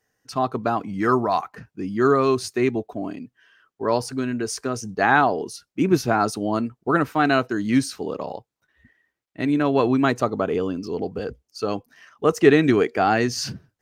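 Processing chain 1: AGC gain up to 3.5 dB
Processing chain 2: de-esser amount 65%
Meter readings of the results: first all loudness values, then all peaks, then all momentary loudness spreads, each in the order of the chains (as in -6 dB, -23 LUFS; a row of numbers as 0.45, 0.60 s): -20.5, -22.5 LUFS; -2.0, -2.5 dBFS; 12, 14 LU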